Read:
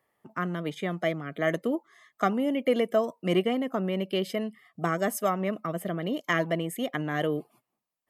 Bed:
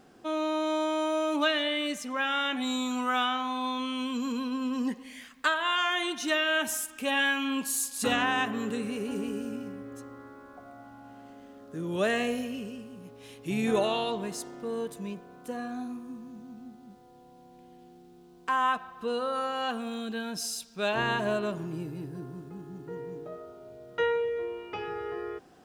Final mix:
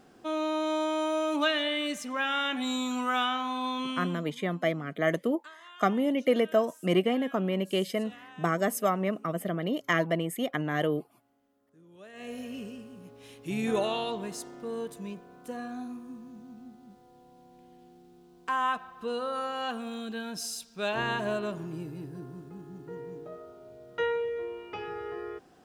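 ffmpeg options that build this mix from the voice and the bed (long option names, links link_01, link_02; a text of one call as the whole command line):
ffmpeg -i stem1.wav -i stem2.wav -filter_complex "[0:a]adelay=3600,volume=0dB[link_01];[1:a]volume=20.5dB,afade=type=out:start_time=3.89:duration=0.36:silence=0.0749894,afade=type=in:start_time=12.13:duration=0.47:silence=0.0891251[link_02];[link_01][link_02]amix=inputs=2:normalize=0" out.wav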